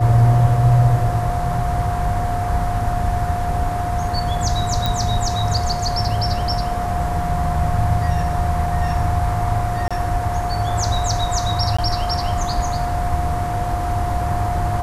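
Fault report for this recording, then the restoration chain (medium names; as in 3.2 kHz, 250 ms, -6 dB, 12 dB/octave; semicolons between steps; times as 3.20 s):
whine 710 Hz -23 dBFS
4.86 s: pop
9.88–9.91 s: dropout 26 ms
11.77–11.79 s: dropout 15 ms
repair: de-click; band-stop 710 Hz, Q 30; interpolate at 9.88 s, 26 ms; interpolate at 11.77 s, 15 ms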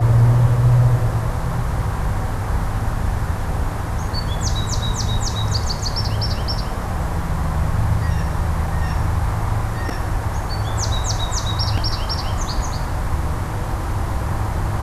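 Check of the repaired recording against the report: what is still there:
nothing left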